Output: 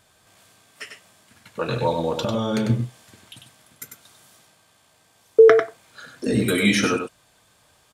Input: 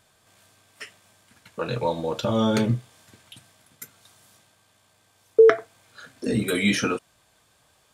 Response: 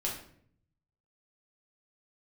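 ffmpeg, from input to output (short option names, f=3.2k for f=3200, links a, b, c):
-filter_complex "[0:a]asettb=1/sr,asplit=3[a][b][c];[a]atrim=end=2.184[d];[b]atrim=start=2.18:end=2.7,asetpts=PTS-STARTPTS,afade=t=in:d=0.004:c=qsin,afade=t=out:st=0.516:d=0.004:c=qsin,acompressor=threshold=-24dB:ratio=4[e];[c]atrim=start=2.696[f];[d][e]acrossfade=d=0.004:c1=hsin:c2=qsin[g];[g][f]acrossfade=d=0.004:c1=qsin:c2=hsin,aecho=1:1:97:0.501,volume=2.5dB"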